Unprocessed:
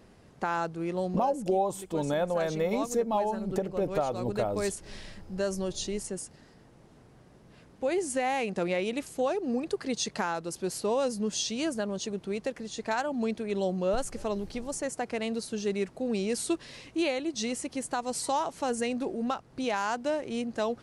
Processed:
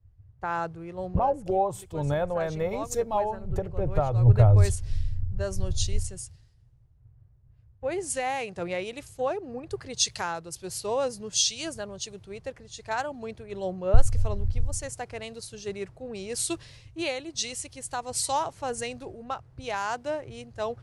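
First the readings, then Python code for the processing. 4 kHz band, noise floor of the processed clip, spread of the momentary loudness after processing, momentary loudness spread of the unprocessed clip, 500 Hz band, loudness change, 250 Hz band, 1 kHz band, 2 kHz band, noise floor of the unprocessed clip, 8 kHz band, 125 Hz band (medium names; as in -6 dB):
+4.0 dB, -57 dBFS, 12 LU, 6 LU, -1.0 dB, +2.0 dB, -6.0 dB, +1.0 dB, -0.5 dB, -56 dBFS, +5.0 dB, +14.5 dB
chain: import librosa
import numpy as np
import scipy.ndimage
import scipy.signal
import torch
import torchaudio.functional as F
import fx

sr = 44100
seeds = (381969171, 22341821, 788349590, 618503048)

y = fx.low_shelf_res(x, sr, hz=150.0, db=12.5, q=3.0)
y = fx.band_widen(y, sr, depth_pct=100)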